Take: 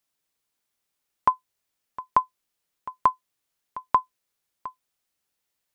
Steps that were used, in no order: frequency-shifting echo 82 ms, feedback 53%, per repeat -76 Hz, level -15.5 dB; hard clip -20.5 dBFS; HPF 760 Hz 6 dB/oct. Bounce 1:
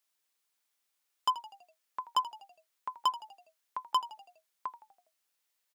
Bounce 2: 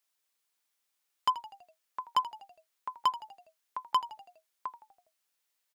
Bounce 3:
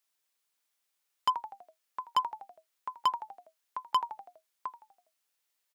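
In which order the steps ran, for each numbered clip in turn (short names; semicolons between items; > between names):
hard clip > frequency-shifting echo > HPF; HPF > hard clip > frequency-shifting echo; frequency-shifting echo > HPF > hard clip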